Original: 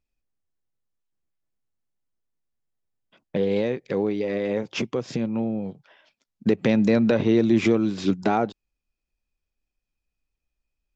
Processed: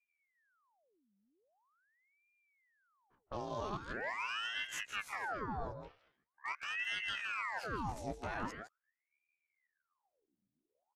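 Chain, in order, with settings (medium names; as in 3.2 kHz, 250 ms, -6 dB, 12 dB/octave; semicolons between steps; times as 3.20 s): short-time spectra conjugated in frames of 47 ms; reverse; compression 16:1, threshold -33 dBFS, peak gain reduction 16.5 dB; reverse; pitch shift +8 st; level-controlled noise filter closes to 570 Hz, open at -36 dBFS; echo from a far wall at 28 m, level -8 dB; ring modulator with a swept carrier 1.3 kHz, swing 85%, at 0.43 Hz; trim -1 dB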